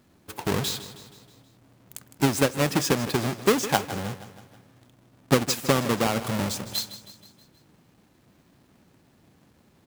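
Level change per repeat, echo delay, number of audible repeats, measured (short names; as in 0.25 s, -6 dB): -5.5 dB, 0.159 s, 4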